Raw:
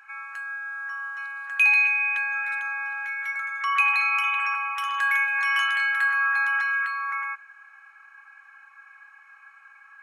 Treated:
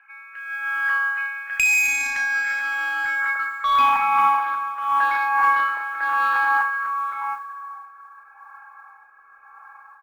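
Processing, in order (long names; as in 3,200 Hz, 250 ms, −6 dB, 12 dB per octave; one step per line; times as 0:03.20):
head-to-tape spacing loss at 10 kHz 27 dB
low-pass filter sweep 2,500 Hz → 920 Hz, 0:01.82–0:04.09
dynamic equaliser 2,000 Hz, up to +3 dB, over −33 dBFS, Q 1.1
soft clipping −17 dBFS, distortion −12 dB
convolution reverb RT60 3.5 s, pre-delay 3 ms, DRR 15.5 dB
rotating-speaker cabinet horn 0.9 Hz
harmonic generator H 2 −24 dB, 3 −12 dB, 5 −28 dB, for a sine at −14.5 dBFS
automatic gain control gain up to 13.5 dB
noise that follows the level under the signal 35 dB
0:00.97–0:03.24: downward compressor 6 to 1, threshold −26 dBFS, peak gain reduction 15 dB
double-tracking delay 35 ms −7.5 dB
level +7 dB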